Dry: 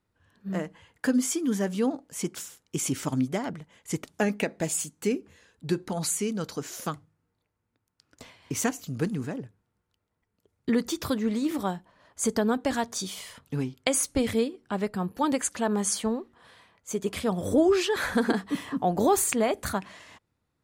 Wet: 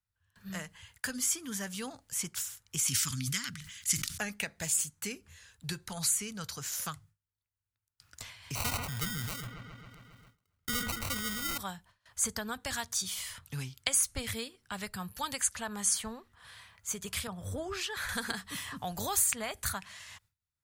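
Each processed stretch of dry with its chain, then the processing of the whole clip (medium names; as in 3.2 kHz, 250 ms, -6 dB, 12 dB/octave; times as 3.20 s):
2.88–4.18 s: FFT filter 160 Hz 0 dB, 240 Hz +4 dB, 720 Hz -24 dB, 1.2 kHz +1 dB, 5 kHz +12 dB, 8.2 kHz +9 dB + decay stretcher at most 84 dB/s
8.55–11.58 s: sample-rate reducer 1.7 kHz + feedback echo behind a low-pass 135 ms, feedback 62%, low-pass 2.3 kHz, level -13 dB + decay stretcher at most 30 dB/s
17.27–18.09 s: treble shelf 2.8 kHz -10.5 dB + three bands expanded up and down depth 40%
whole clip: gate with hold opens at -49 dBFS; FFT filter 100 Hz 0 dB, 310 Hz -22 dB, 1.5 kHz -3 dB, 2.3 kHz -3 dB, 15 kHz +5 dB; three bands compressed up and down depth 40%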